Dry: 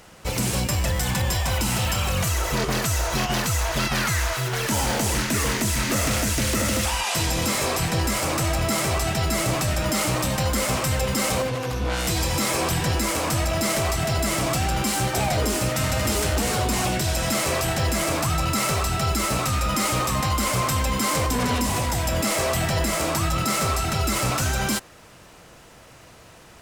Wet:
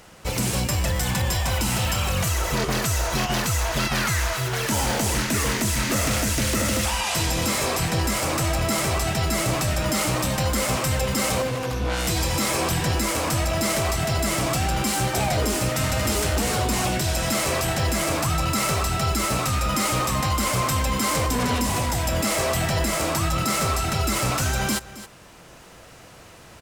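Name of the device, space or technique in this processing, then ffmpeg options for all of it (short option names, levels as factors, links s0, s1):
ducked delay: -filter_complex "[0:a]asplit=3[s0][s1][s2];[s1]adelay=269,volume=0.708[s3];[s2]apad=whole_len=1185552[s4];[s3][s4]sidechaincompress=threshold=0.0141:ratio=10:attack=16:release=711[s5];[s0][s5]amix=inputs=2:normalize=0"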